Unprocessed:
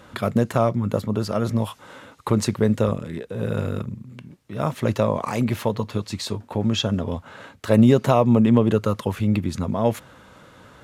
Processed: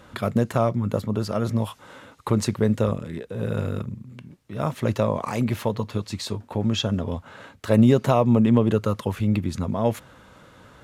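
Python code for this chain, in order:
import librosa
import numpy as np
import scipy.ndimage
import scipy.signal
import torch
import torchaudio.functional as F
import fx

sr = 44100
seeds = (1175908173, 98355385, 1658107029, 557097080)

y = fx.low_shelf(x, sr, hz=60.0, db=5.5)
y = y * librosa.db_to_amplitude(-2.0)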